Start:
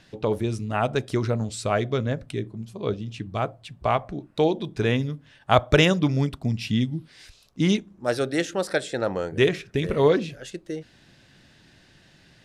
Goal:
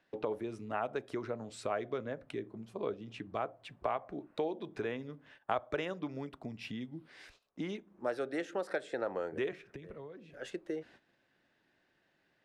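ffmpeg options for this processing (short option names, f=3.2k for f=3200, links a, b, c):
-filter_complex "[0:a]agate=range=-14dB:threshold=-51dB:ratio=16:detection=peak,acompressor=threshold=-32dB:ratio=4,acrossover=split=270 2400:gain=0.158 1 0.224[a][b][c];[a][b][c]amix=inputs=3:normalize=0,asettb=1/sr,asplit=3[d][e][f];[d]atrim=end=9.524[g];[e]atrim=start=9.52:end=10.34,asetpts=PTS-STARTPTS,afade=t=in:d=0.004:c=qsin,afade=t=out:st=0.816:d=0.004:c=qsin,acrossover=split=160[h][i];[i]acompressor=threshold=-50dB:ratio=4[j];[h][j]amix=inputs=2:normalize=0[k];[f]atrim=start=10.336[l];[g][k]acrossfade=d=0.004:c1=hsin:c2=qsin[m];[m][l]acrossfade=d=0.004:c1=qsin:c2=hsin"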